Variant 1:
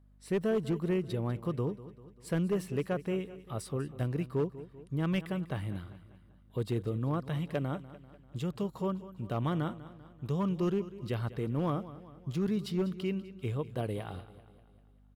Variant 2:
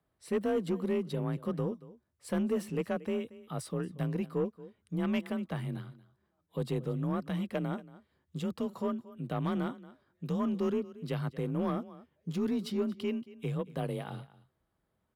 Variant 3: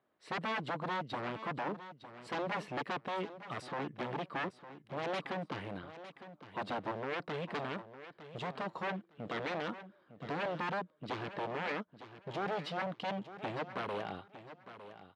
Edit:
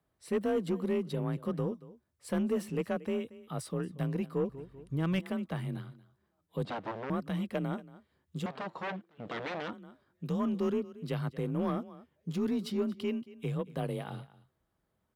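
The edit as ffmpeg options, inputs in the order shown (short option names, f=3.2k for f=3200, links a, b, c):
-filter_complex "[2:a]asplit=2[a][b];[1:a]asplit=4[c][d][e][f];[c]atrim=end=4.492[g];[0:a]atrim=start=4.488:end=5.202[h];[d]atrim=start=5.198:end=6.652[i];[a]atrim=start=6.648:end=7.102[j];[e]atrim=start=7.098:end=8.462[k];[b]atrim=start=8.458:end=9.732[l];[f]atrim=start=9.728[m];[g][h]acrossfade=d=0.004:c1=hsin:c2=hsin[n];[n][i]acrossfade=d=0.004:c1=hsin:c2=hsin[o];[o][j]acrossfade=d=0.004:c1=hsin:c2=hsin[p];[p][k]acrossfade=d=0.004:c1=hsin:c2=hsin[q];[q][l]acrossfade=d=0.004:c1=hsin:c2=hsin[r];[r][m]acrossfade=d=0.004:c1=hsin:c2=hsin"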